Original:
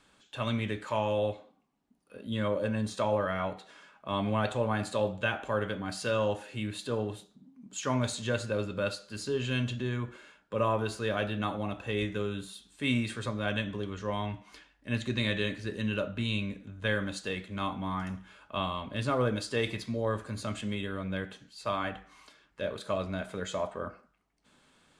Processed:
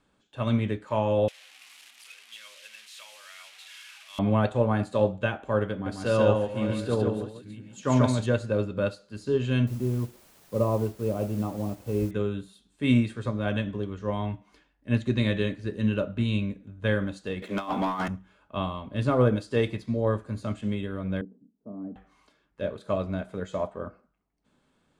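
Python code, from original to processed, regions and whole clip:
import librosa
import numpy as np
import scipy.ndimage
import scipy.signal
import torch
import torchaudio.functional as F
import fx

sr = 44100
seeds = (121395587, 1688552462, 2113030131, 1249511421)

y = fx.chain(x, sr, fx.delta_mod(bps=64000, step_db=-32.0),
    fx.highpass_res(hz=2600.0, q=2.0),
    fx.clip_hard(threshold_db=-27.5), at=(1.28, 4.19))
y = fx.chain(y, sr, fx.reverse_delay(ms=680, wet_db=-9.5),
    fx.echo_single(ms=140, db=-3.0), at=(5.72, 8.26))
y = fx.chain(y, sr, fx.moving_average(points=25),
    fx.quant_dither(seeds[0], bits=8, dither='triangular'), at=(9.67, 12.11))
y = fx.chain(y, sr, fx.highpass(hz=370.0, slope=12),
    fx.over_compress(threshold_db=-38.0, ratio=-0.5),
    fx.leveller(passes=3), at=(17.42, 18.08))
y = fx.chain(y, sr, fx.ladder_bandpass(hz=300.0, resonance_pct=50),
    fx.tilt_eq(slope=-4.5),
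    fx.comb(ms=4.5, depth=0.35), at=(21.21, 21.96))
y = fx.tilt_shelf(y, sr, db=5.0, hz=970.0)
y = fx.upward_expand(y, sr, threshold_db=-42.0, expansion=1.5)
y = y * librosa.db_to_amplitude(4.5)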